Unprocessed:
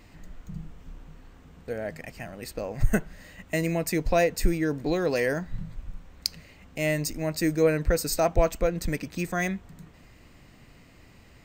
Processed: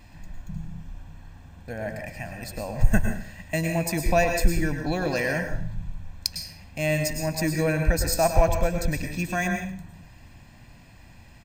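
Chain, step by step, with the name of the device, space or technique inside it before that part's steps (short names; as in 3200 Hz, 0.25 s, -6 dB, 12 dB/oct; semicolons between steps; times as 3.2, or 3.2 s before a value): microphone above a desk (comb 1.2 ms, depth 63%; reverb RT60 0.50 s, pre-delay 98 ms, DRR 4 dB)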